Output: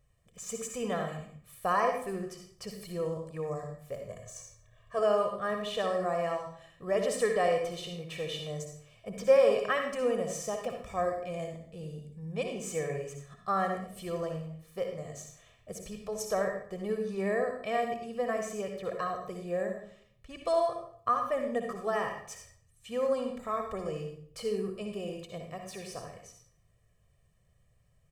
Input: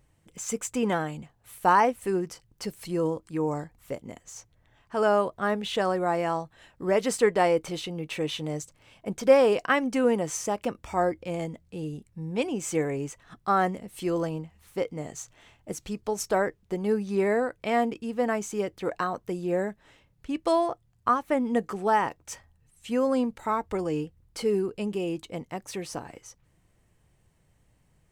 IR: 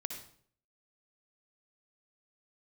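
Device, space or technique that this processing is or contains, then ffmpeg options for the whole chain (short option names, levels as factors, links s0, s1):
microphone above a desk: -filter_complex "[0:a]asettb=1/sr,asplit=3[s0][s1][s2];[s0]atrim=end=3.994[s3];[s1]atrim=start=3.99:end=4.99,asetpts=PTS-STARTPTS,afade=t=in:d=0.004:c=qsin,afade=t=out:st=0.996:d=0.004:c=qsin,aecho=1:1:1.8:0.99,atrim=end_sample=44100[s4];[s2]atrim=start=4.986[s5];[s3][s4]acrossfade=d=0.004:c1=hsin:c2=qsin[s6];[s6][s5]acrossfade=d=0.004:c1=qsin:c2=hsin,aecho=1:1:1.7:0.78[s7];[1:a]atrim=start_sample=2205[s8];[s7][s8]afir=irnorm=-1:irlink=0,volume=0.473"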